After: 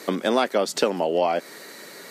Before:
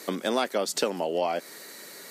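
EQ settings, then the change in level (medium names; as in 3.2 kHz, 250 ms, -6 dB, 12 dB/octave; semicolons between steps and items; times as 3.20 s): treble shelf 5.1 kHz -8.5 dB; +5.5 dB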